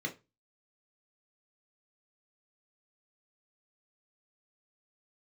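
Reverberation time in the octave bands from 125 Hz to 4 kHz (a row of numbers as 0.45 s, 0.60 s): 0.35 s, 0.25 s, 0.25 s, 0.25 s, 0.25 s, 0.20 s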